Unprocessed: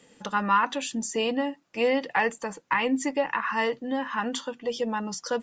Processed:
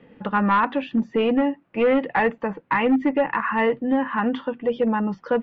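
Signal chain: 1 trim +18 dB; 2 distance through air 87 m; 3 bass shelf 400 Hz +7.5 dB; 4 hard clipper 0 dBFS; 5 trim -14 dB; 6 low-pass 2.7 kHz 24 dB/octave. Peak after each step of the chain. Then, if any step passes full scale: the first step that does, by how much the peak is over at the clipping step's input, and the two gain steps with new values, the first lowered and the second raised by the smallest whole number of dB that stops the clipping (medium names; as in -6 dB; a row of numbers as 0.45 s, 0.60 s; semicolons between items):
+6.5 dBFS, +6.0 dBFS, +8.0 dBFS, 0.0 dBFS, -14.0 dBFS, -12.5 dBFS; step 1, 8.0 dB; step 1 +10 dB, step 5 -6 dB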